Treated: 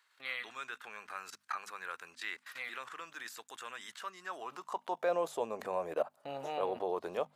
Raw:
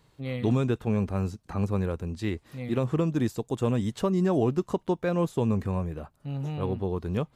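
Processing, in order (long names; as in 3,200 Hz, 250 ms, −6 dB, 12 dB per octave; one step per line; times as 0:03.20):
output level in coarse steps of 19 dB
high-pass filter sweep 1,500 Hz → 620 Hz, 0:04.19–0:05.10
mains-hum notches 50/100/150/200/250 Hz
level +7.5 dB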